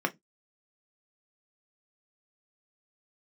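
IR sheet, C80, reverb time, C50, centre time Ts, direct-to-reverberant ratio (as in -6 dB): 36.0 dB, not exponential, 25.5 dB, 6 ms, 5.0 dB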